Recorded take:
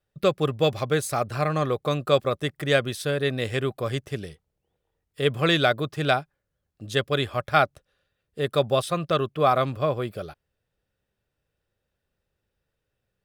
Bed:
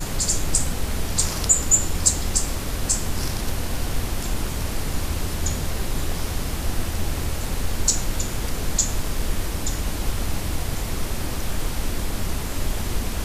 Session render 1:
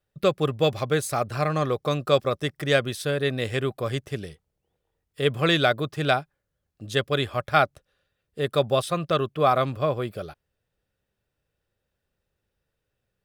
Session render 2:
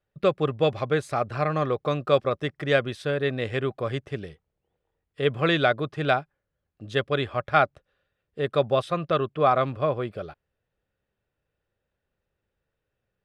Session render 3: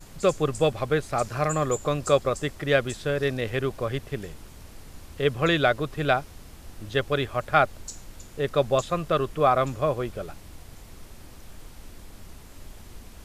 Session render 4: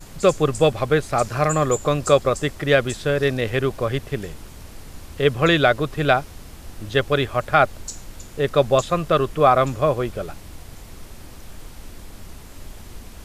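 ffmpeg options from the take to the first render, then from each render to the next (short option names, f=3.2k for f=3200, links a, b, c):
-filter_complex "[0:a]asettb=1/sr,asplit=3[a][b][c];[a]atrim=end=1.374[d];[b]atrim=start=1.37:end=2.8,asetpts=PTS-STARTPTS,afade=t=in:d=0.004:c=qsin,afade=t=out:st=1.426:d=0.004:c=qsin,equalizer=f=5.4k:t=o:w=0.26:g=7[e];[c]atrim=start=2.796[f];[d][e]acrossfade=d=0.004:c1=hsin:c2=qsin[g];[g][f]acrossfade=d=0.004:c1=qsin:c2=hsin"
-af "lowpass=8.9k,bass=f=250:g=-2,treble=f=4k:g=-12"
-filter_complex "[1:a]volume=-19dB[a];[0:a][a]amix=inputs=2:normalize=0"
-af "volume=5.5dB,alimiter=limit=-3dB:level=0:latency=1"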